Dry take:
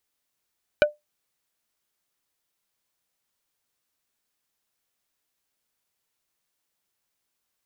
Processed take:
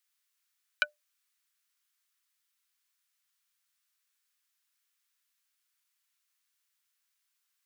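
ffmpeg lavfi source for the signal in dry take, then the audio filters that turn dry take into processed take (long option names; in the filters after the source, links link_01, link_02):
-f lavfi -i "aevalsrc='0.316*pow(10,-3*t/0.17)*sin(2*PI*596*t)+0.2*pow(10,-3*t/0.057)*sin(2*PI*1490*t)+0.126*pow(10,-3*t/0.032)*sin(2*PI*2384*t)+0.0794*pow(10,-3*t/0.025)*sin(2*PI*2980*t)+0.0501*pow(10,-3*t/0.018)*sin(2*PI*3874*t)':duration=0.45:sample_rate=44100"
-af "highpass=frequency=1200:width=0.5412,highpass=frequency=1200:width=1.3066"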